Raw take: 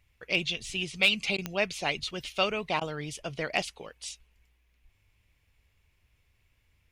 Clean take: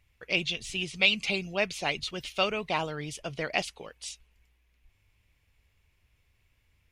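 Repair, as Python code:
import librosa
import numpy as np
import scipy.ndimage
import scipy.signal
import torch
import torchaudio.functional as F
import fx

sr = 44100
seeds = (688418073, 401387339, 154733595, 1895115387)

y = fx.fix_declip(x, sr, threshold_db=-13.5)
y = fx.fix_declick_ar(y, sr, threshold=10.0)
y = fx.fix_interpolate(y, sr, at_s=(1.37, 2.8), length_ms=11.0)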